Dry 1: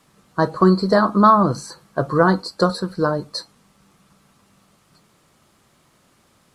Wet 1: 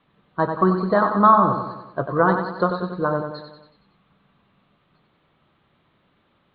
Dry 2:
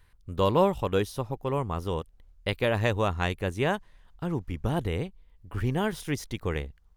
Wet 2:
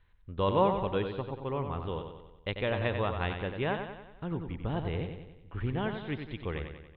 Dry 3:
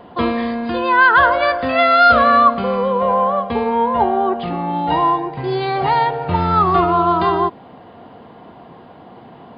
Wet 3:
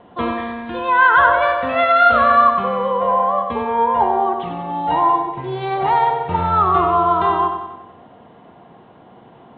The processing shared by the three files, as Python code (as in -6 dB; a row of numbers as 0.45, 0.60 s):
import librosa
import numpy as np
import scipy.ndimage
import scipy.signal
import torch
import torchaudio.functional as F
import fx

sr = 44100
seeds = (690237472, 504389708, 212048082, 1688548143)

p1 = scipy.signal.sosfilt(scipy.signal.butter(12, 3900.0, 'lowpass', fs=sr, output='sos'), x)
p2 = fx.dynamic_eq(p1, sr, hz=1000.0, q=0.81, threshold_db=-24.0, ratio=4.0, max_db=5)
p3 = p2 + fx.echo_feedback(p2, sr, ms=93, feedback_pct=53, wet_db=-7, dry=0)
y = p3 * 10.0 ** (-5.5 / 20.0)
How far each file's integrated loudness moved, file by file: -2.0, -4.0, -1.0 LU